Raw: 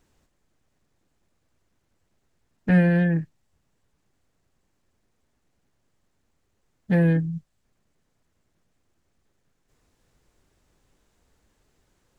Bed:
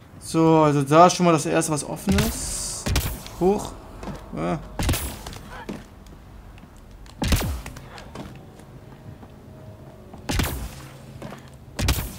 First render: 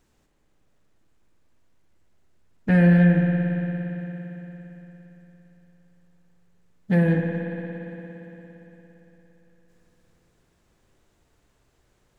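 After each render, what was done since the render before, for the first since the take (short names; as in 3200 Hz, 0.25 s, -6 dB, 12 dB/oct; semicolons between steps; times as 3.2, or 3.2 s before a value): spring tank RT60 4 s, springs 57 ms, chirp 25 ms, DRR 1.5 dB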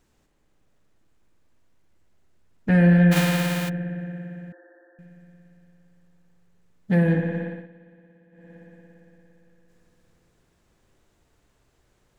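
3.11–3.68 spectral whitening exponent 0.3; 4.52–4.99 brick-wall FIR band-pass 280–1900 Hz; 7.44–8.55 dip -15 dB, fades 0.24 s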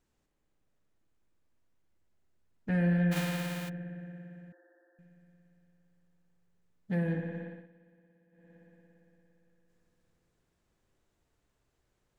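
gain -11.5 dB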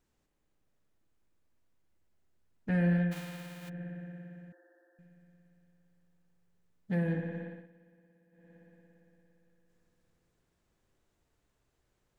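2.96–3.82 dip -10 dB, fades 0.21 s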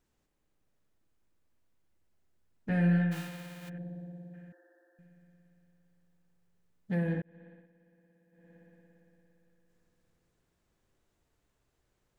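2.69–3.28 flutter echo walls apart 3.1 m, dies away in 0.22 s; 3.78–4.34 band shelf 1800 Hz -15 dB; 7.22–8.58 fade in equal-power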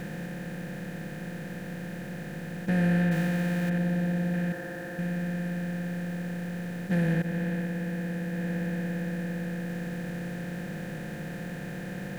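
per-bin compression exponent 0.2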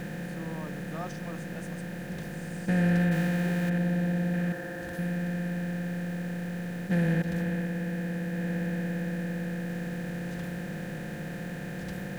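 add bed -26.5 dB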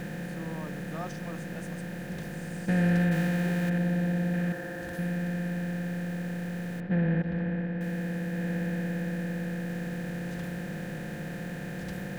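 6.8–7.81 air absorption 370 m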